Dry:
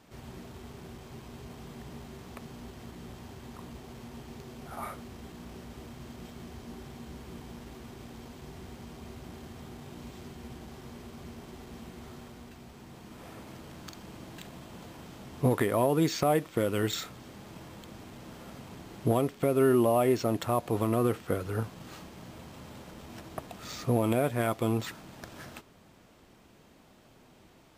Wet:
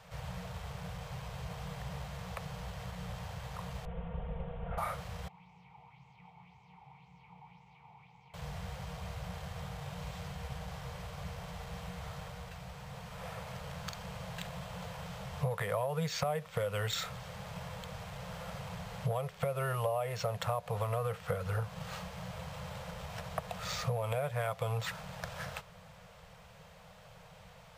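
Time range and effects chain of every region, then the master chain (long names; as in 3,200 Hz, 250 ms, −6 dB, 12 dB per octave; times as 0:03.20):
0:03.85–0:04.78: lower of the sound and its delayed copy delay 4.3 ms + Butterworth low-pass 3,400 Hz 72 dB per octave + tilt shelving filter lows +9 dB, about 700 Hz
0:05.28–0:08.34: formant filter u + parametric band 140 Hz +7 dB 0.65 octaves + auto-filter bell 1.9 Hz 660–7,300 Hz +9 dB
whole clip: elliptic band-stop filter 180–480 Hz, stop band 40 dB; high-shelf EQ 4,800 Hz −6.5 dB; downward compressor 6 to 1, threshold −37 dBFS; level +6 dB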